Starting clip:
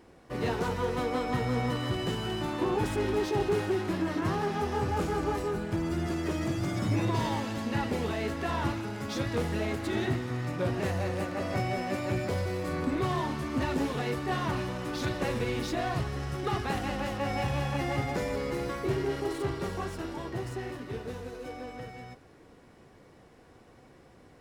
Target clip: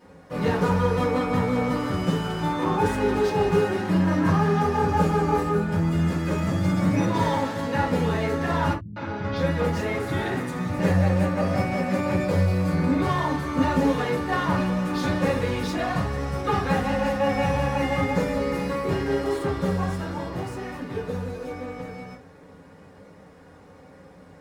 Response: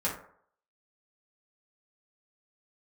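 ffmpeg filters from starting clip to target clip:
-filter_complex "[0:a]asettb=1/sr,asplit=3[link_01][link_02][link_03];[link_01]atrim=end=8.734[link_04];[link_02]atrim=start=8.73:end=10.79,asetpts=PTS-STARTPTS,afade=type=in:duration=0.004:curve=qsin,afade=type=out:start_time=2.056:duration=0.004:curve=qsin,acrossover=split=180|5000[link_05][link_06][link_07];[link_06]adelay=230[link_08];[link_07]adelay=630[link_09];[link_05][link_08][link_09]amix=inputs=3:normalize=0,atrim=end_sample=90846[link_10];[link_03]atrim=start=10.786[link_11];[link_04][link_10]acrossfade=duration=0.004:curve1=hsin:curve2=qsin[link_12];[link_12][link_11]acrossfade=duration=0.004:curve1=qsin:curve2=hsin[link_13];[1:a]atrim=start_sample=2205,atrim=end_sample=3528[link_14];[link_13][link_14]afir=irnorm=-1:irlink=0"

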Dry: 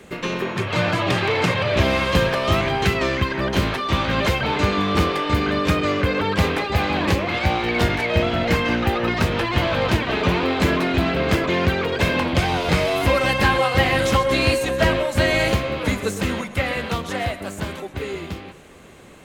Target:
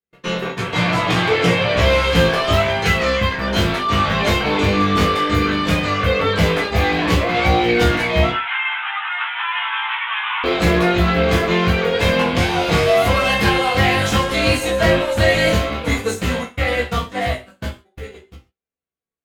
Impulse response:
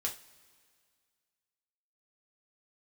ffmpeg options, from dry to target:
-filter_complex "[0:a]agate=range=-53dB:threshold=-25dB:ratio=16:detection=peak,acontrast=28,asettb=1/sr,asplit=3[link_01][link_02][link_03];[link_01]atrim=end=8.304[link_04];[link_02]atrim=start=8.3:end=10.44,asetpts=PTS-STARTPTS,afade=type=in:duration=0.004:curve=qsin,afade=type=out:start_time=2.136:duration=0.004:curve=qsin,asuperpass=centerf=1700:order=20:qfactor=0.65[link_05];[link_03]atrim=start=10.436[link_06];[link_04][link_05]acrossfade=duration=0.004:curve1=hsin:curve2=qsin[link_07];[link_07][link_06]acrossfade=duration=0.004:curve1=qsin:curve2=hsin,flanger=delay=15.5:depth=4.3:speed=0.11[link_08];[1:a]atrim=start_sample=2205,afade=type=out:start_time=0.2:duration=0.01,atrim=end_sample=9261[link_09];[link_08][link_09]afir=irnorm=-1:irlink=0"

